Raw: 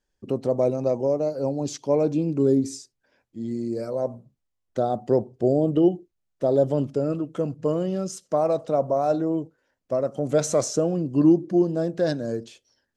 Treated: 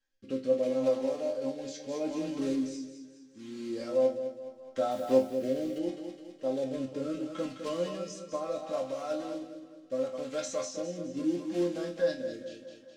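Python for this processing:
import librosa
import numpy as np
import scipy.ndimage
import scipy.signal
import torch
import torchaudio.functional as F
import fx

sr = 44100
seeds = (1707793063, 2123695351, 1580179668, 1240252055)

y = fx.block_float(x, sr, bits=5)
y = fx.tilt_shelf(y, sr, db=-6.5, hz=1100.0)
y = y + 0.58 * np.pad(y, (int(3.7 * sr / 1000.0), 0))[:len(y)]
y = fx.rider(y, sr, range_db=4, speed_s=0.5)
y = fx.air_absorb(y, sr, metres=110.0)
y = fx.resonator_bank(y, sr, root=41, chord='minor', decay_s=0.31)
y = fx.echo_feedback(y, sr, ms=209, feedback_pct=44, wet_db=-8.0)
y = fx.quant_dither(y, sr, seeds[0], bits=10, dither='none', at=(4.91, 5.79))
y = fx.rotary(y, sr, hz=0.75)
y = y * 10.0 ** (7.0 / 20.0)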